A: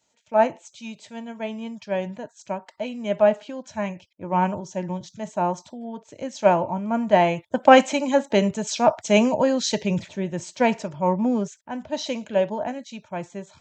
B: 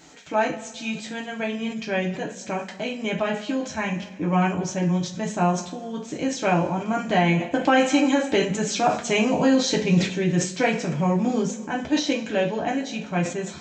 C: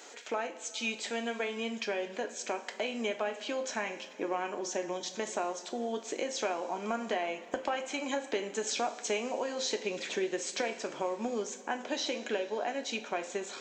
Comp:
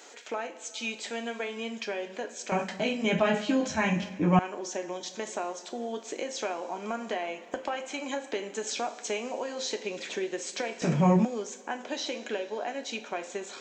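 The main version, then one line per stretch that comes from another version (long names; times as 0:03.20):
C
0:02.52–0:04.39: punch in from B
0:10.82–0:11.25: punch in from B
not used: A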